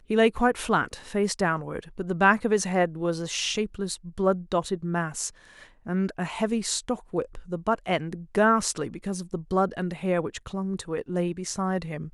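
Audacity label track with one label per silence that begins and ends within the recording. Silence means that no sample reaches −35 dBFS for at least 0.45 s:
5.290000	5.860000	silence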